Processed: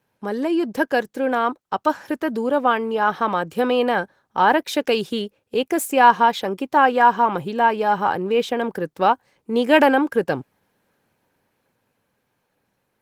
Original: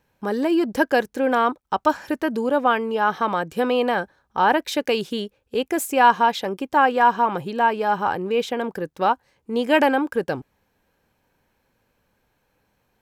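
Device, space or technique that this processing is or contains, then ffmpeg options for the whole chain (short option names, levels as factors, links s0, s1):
video call: -af "highpass=f=100:w=0.5412,highpass=f=100:w=1.3066,dynaudnorm=f=380:g=13:m=3.76,volume=0.891" -ar 48000 -c:a libopus -b:a 20k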